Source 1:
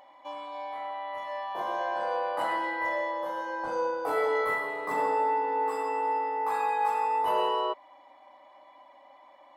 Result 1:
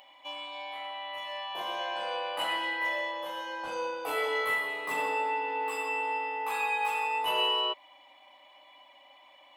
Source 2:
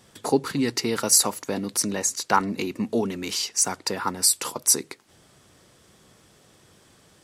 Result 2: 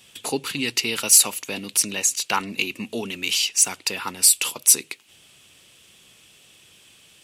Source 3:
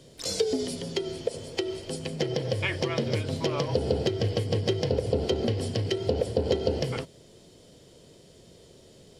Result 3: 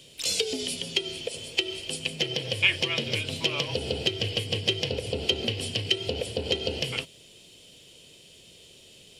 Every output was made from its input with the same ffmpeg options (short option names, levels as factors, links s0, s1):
-af "aexciter=amount=2.4:drive=5:freq=2800,equalizer=f=2600:t=o:w=0.82:g=15,volume=0.531"